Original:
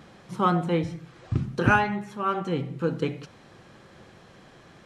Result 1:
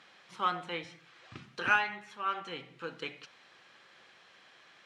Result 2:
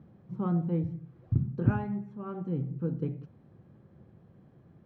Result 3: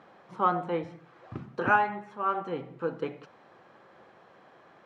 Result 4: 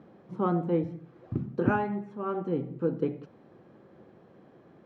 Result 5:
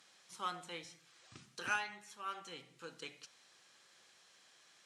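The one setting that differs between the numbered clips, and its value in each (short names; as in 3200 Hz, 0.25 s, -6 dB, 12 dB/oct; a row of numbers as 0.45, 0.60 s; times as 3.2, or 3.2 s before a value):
band-pass, frequency: 2800, 120, 860, 330, 7600 Hz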